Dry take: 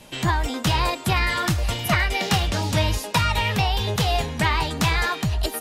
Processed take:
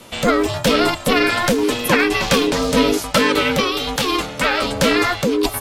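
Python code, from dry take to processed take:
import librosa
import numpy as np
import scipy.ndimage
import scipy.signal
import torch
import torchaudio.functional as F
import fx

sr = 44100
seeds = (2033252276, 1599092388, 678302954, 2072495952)

y = fx.low_shelf(x, sr, hz=280.0, db=-9.5, at=(3.6, 4.63))
y = y * np.sin(2.0 * np.pi * 360.0 * np.arange(len(y)) / sr)
y = y * librosa.db_to_amplitude(8.0)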